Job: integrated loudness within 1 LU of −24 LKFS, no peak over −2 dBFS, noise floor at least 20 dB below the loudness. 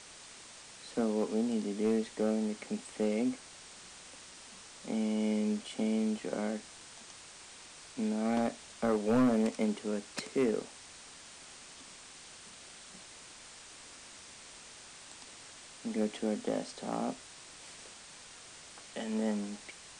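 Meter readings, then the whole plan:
share of clipped samples 0.5%; peaks flattened at −22.5 dBFS; background noise floor −52 dBFS; target noise floor −54 dBFS; integrated loudness −33.5 LKFS; sample peak −22.5 dBFS; target loudness −24.0 LKFS
→ clipped peaks rebuilt −22.5 dBFS
broadband denoise 6 dB, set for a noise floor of −52 dBFS
level +9.5 dB

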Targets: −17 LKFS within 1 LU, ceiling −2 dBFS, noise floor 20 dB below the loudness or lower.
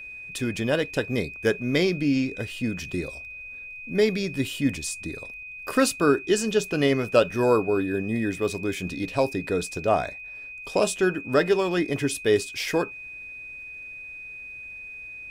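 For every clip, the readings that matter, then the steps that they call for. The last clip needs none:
crackle rate 23 per second; interfering tone 2,500 Hz; level of the tone −37 dBFS; integrated loudness −25.0 LKFS; sample peak −5.5 dBFS; target loudness −17.0 LKFS
→ click removal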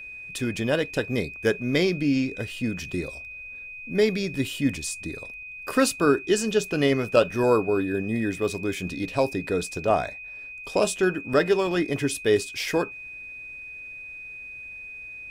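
crackle rate 0.20 per second; interfering tone 2,500 Hz; level of the tone −37 dBFS
→ notch filter 2,500 Hz, Q 30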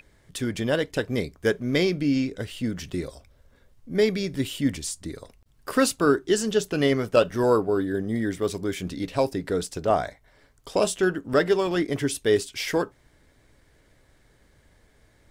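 interfering tone none found; integrated loudness −25.0 LKFS; sample peak −6.0 dBFS; target loudness −17.0 LKFS
→ level +8 dB
brickwall limiter −2 dBFS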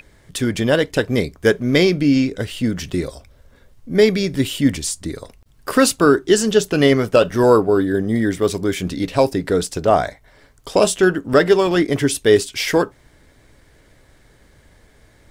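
integrated loudness −17.5 LKFS; sample peak −2.0 dBFS; background noise floor −53 dBFS

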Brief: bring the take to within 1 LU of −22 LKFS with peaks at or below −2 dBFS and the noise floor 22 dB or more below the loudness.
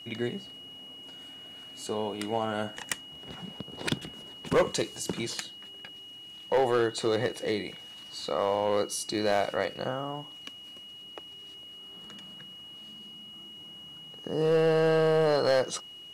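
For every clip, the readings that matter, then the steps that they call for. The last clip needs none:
share of clipped samples 0.7%; peaks flattened at −18.0 dBFS; interfering tone 2,900 Hz; level of the tone −44 dBFS; integrated loudness −29.0 LKFS; sample peak −18.0 dBFS; target loudness −22.0 LKFS
→ clipped peaks rebuilt −18 dBFS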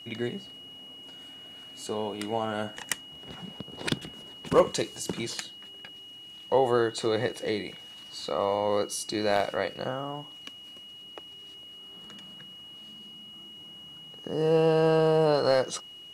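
share of clipped samples 0.0%; interfering tone 2,900 Hz; level of the tone −44 dBFS
→ notch filter 2,900 Hz, Q 30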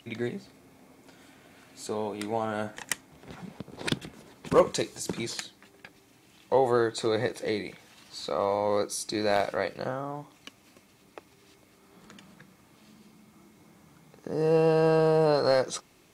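interfering tone none found; integrated loudness −28.0 LKFS; sample peak −9.0 dBFS; target loudness −22.0 LKFS
→ level +6 dB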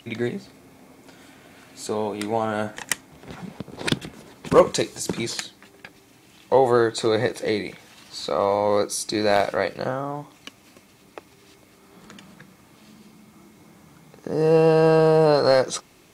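integrated loudness −22.0 LKFS; sample peak −3.0 dBFS; background noise floor −54 dBFS

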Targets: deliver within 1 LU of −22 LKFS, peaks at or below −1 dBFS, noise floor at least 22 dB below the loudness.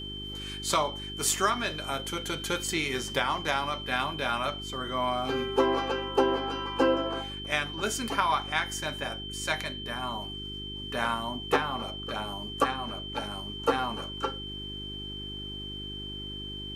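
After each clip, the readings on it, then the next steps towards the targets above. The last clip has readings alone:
mains hum 50 Hz; hum harmonics up to 400 Hz; level of the hum −39 dBFS; interfering tone 3,100 Hz; level of the tone −38 dBFS; integrated loudness −30.5 LKFS; sample peak −9.5 dBFS; target loudness −22.0 LKFS
→ hum removal 50 Hz, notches 8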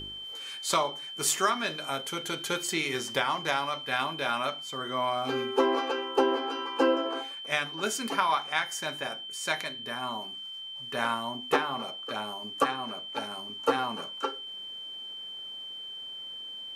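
mains hum none found; interfering tone 3,100 Hz; level of the tone −38 dBFS
→ notch filter 3,100 Hz, Q 30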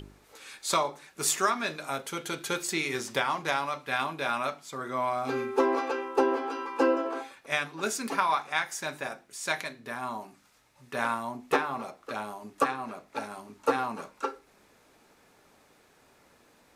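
interfering tone none found; integrated loudness −30.5 LKFS; sample peak −10.0 dBFS; target loudness −22.0 LKFS
→ level +8.5 dB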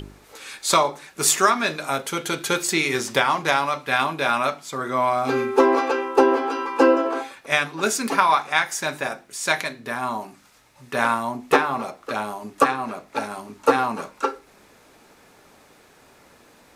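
integrated loudness −22.0 LKFS; sample peak −1.5 dBFS; background noise floor −54 dBFS

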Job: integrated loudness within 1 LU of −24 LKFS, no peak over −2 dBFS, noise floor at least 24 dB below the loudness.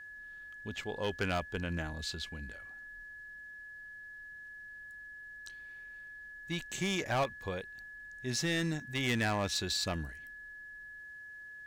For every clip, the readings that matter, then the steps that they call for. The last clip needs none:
share of clipped samples 0.6%; peaks flattened at −26.0 dBFS; interfering tone 1,700 Hz; level of the tone −46 dBFS; integrated loudness −37.5 LKFS; sample peak −26.0 dBFS; target loudness −24.0 LKFS
→ clipped peaks rebuilt −26 dBFS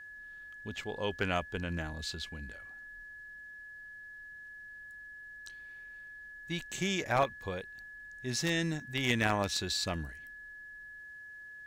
share of clipped samples 0.0%; interfering tone 1,700 Hz; level of the tone −46 dBFS
→ notch filter 1,700 Hz, Q 30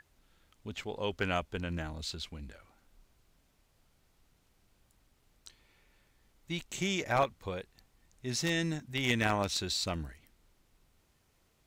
interfering tone none found; integrated loudness −34.0 LKFS; sample peak −17.0 dBFS; target loudness −24.0 LKFS
→ level +10 dB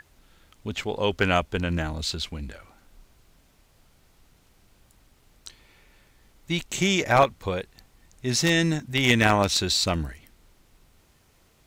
integrated loudness −24.0 LKFS; sample peak −7.0 dBFS; background noise floor −61 dBFS

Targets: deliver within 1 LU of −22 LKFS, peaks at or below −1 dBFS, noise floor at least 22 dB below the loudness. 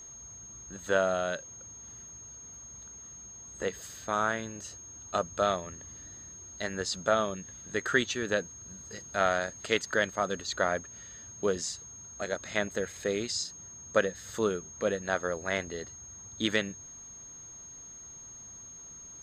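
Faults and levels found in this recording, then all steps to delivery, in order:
interfering tone 6,500 Hz; level of the tone −45 dBFS; integrated loudness −31.5 LKFS; sample peak −9.5 dBFS; target loudness −22.0 LKFS
→ notch filter 6,500 Hz, Q 30
level +9.5 dB
brickwall limiter −1 dBFS

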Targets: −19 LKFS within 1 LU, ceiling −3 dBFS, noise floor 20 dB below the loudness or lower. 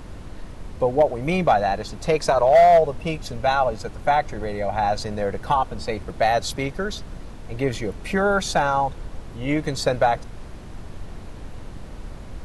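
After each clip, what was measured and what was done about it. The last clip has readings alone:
share of clipped samples 0.7%; peaks flattened at −9.0 dBFS; background noise floor −38 dBFS; target noise floor −42 dBFS; integrated loudness −22.0 LKFS; sample peak −9.0 dBFS; target loudness −19.0 LKFS
→ clipped peaks rebuilt −9 dBFS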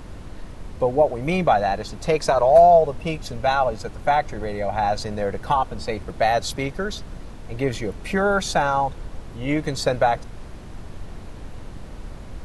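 share of clipped samples 0.0%; background noise floor −38 dBFS; target noise floor −42 dBFS
→ noise reduction from a noise print 6 dB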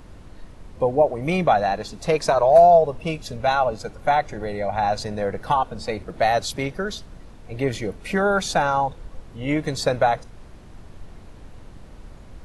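background noise floor −44 dBFS; integrated loudness −21.5 LKFS; sample peak −3.5 dBFS; target loudness −19.0 LKFS
→ level +2.5 dB
brickwall limiter −3 dBFS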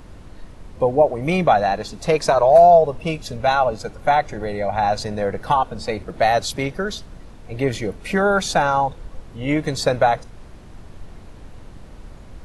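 integrated loudness −19.0 LKFS; sample peak −3.0 dBFS; background noise floor −41 dBFS

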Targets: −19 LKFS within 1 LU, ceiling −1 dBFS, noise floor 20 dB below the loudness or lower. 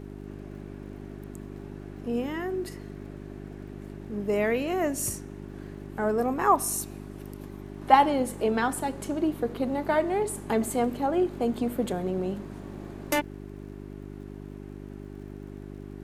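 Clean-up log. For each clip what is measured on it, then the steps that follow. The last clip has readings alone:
crackle rate 56 per second; mains hum 50 Hz; hum harmonics up to 400 Hz; level of the hum −38 dBFS; integrated loudness −27.5 LKFS; sample peak −5.0 dBFS; target loudness −19.0 LKFS
→ click removal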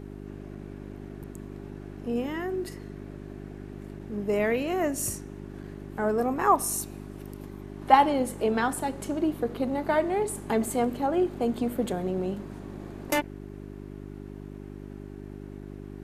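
crackle rate 0.56 per second; mains hum 50 Hz; hum harmonics up to 400 Hz; level of the hum −38 dBFS
→ hum removal 50 Hz, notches 8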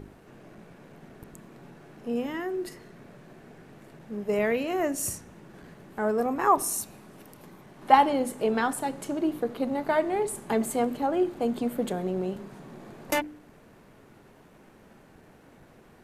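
mains hum none found; integrated loudness −27.5 LKFS; sample peak −5.0 dBFS; target loudness −19.0 LKFS
→ level +8.5 dB
brickwall limiter −1 dBFS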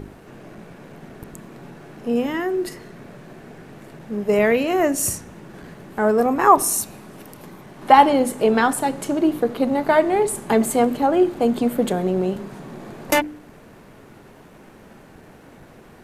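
integrated loudness −19.5 LKFS; sample peak −1.0 dBFS; background noise floor −46 dBFS

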